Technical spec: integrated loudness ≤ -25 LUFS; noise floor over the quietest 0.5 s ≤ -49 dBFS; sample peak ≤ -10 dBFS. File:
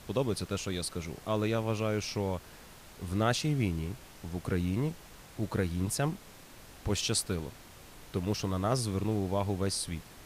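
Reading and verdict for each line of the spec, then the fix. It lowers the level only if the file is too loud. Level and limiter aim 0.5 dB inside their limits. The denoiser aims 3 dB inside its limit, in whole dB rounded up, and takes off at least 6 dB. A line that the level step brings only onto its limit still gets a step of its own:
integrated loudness -32.5 LUFS: OK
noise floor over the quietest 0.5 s -52 dBFS: OK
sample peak -15.5 dBFS: OK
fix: none

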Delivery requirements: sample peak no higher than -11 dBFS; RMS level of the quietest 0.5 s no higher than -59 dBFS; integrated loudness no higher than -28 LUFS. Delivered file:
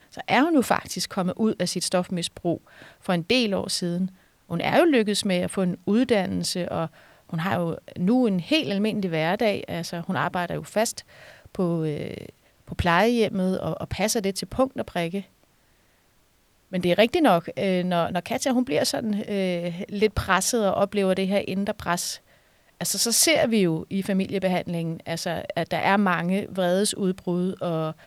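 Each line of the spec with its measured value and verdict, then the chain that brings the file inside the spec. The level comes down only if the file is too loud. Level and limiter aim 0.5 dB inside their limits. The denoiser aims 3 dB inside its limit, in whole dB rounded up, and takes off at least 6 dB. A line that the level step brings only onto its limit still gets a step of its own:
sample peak -5.0 dBFS: fail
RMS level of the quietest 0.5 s -63 dBFS: OK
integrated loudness -24.0 LUFS: fail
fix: gain -4.5 dB; limiter -11.5 dBFS

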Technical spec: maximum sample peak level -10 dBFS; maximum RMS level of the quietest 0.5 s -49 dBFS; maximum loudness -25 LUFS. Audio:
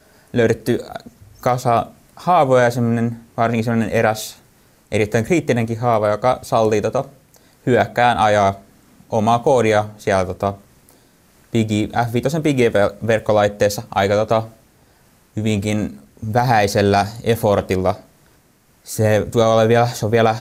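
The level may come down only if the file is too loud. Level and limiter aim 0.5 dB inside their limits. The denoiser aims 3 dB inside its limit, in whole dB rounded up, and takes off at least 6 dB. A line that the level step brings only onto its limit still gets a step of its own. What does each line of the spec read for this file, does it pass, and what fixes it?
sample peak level -4.5 dBFS: fail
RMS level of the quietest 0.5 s -55 dBFS: OK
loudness -18.0 LUFS: fail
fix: gain -7.5 dB

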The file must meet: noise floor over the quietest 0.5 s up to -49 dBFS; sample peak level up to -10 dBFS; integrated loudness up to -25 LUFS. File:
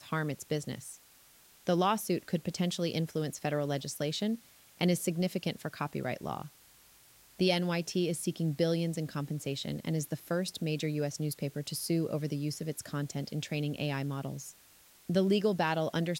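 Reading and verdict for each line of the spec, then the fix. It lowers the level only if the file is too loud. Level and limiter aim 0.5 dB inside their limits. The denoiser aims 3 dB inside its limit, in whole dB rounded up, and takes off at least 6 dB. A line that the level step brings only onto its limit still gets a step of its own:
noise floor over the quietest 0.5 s -60 dBFS: OK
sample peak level -15.5 dBFS: OK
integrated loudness -33.0 LUFS: OK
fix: none

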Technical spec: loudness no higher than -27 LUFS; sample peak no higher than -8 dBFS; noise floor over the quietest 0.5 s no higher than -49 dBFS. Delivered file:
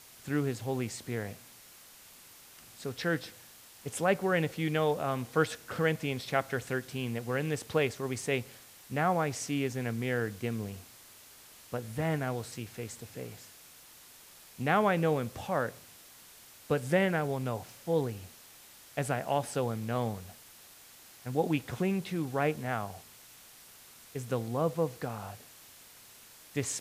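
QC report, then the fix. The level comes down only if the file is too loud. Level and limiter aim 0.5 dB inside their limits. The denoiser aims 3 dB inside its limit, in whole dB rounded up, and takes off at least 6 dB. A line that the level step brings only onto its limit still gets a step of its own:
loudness -32.5 LUFS: OK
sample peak -12.5 dBFS: OK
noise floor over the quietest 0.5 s -54 dBFS: OK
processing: none

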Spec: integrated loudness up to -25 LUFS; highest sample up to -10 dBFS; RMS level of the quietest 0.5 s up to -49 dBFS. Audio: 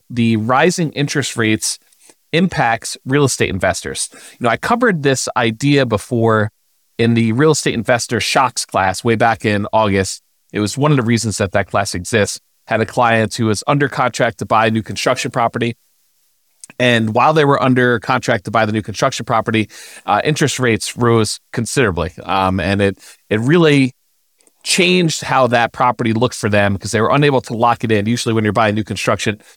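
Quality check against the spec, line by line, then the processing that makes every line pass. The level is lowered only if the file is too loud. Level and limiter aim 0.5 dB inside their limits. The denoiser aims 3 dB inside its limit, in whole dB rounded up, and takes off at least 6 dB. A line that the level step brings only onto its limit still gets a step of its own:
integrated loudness -15.5 LUFS: fail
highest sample -2.0 dBFS: fail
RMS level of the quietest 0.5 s -60 dBFS: OK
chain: gain -10 dB

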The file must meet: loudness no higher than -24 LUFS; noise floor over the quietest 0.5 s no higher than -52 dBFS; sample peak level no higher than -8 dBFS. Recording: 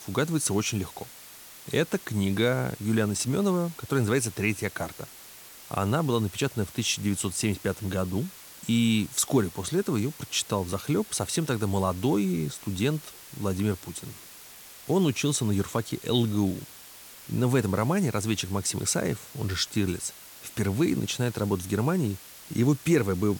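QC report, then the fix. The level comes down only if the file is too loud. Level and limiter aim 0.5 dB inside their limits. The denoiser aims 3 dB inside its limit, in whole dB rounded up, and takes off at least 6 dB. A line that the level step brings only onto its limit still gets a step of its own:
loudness -27.5 LUFS: OK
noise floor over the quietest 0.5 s -47 dBFS: fail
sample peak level -11.0 dBFS: OK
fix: denoiser 8 dB, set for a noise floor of -47 dBFS

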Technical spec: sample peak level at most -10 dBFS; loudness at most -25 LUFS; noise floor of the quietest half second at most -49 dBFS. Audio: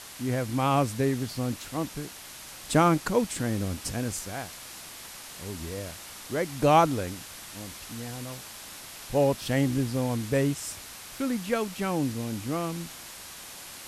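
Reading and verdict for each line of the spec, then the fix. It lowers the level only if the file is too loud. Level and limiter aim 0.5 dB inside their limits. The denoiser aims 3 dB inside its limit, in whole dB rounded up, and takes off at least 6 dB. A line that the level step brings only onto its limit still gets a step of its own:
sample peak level -8.0 dBFS: fail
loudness -28.5 LUFS: OK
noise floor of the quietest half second -44 dBFS: fail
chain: denoiser 8 dB, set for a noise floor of -44 dBFS; limiter -10.5 dBFS

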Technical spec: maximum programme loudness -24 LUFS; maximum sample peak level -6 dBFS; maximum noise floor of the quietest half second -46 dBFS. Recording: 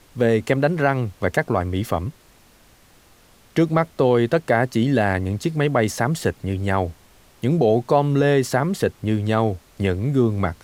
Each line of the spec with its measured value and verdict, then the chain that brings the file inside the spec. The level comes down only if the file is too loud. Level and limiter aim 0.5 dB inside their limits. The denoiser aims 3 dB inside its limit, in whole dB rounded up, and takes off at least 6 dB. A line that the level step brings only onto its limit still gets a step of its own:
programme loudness -21.0 LUFS: fail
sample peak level -4.0 dBFS: fail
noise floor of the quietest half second -53 dBFS: OK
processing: gain -3.5 dB

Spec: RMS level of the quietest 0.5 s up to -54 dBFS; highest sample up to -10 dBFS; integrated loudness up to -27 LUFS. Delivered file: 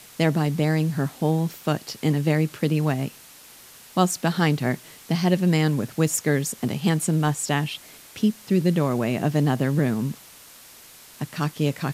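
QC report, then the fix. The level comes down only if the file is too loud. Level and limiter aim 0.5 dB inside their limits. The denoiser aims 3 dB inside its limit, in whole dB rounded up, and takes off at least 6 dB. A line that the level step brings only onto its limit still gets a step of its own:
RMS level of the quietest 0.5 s -47 dBFS: fail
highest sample -6.5 dBFS: fail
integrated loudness -23.5 LUFS: fail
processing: denoiser 6 dB, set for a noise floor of -47 dBFS; gain -4 dB

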